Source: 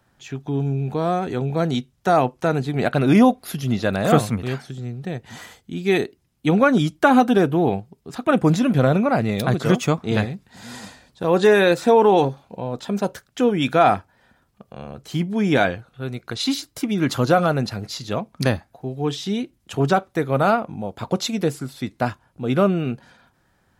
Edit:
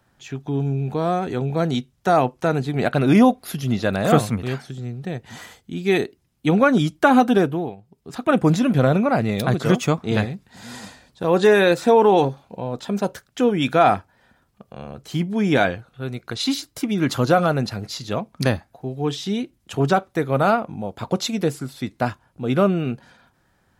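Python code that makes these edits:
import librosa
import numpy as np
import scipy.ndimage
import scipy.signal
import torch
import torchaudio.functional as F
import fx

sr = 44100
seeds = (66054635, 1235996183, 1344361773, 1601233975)

y = fx.edit(x, sr, fx.fade_down_up(start_s=7.38, length_s=0.76, db=-19.0, fade_s=0.38), tone=tone)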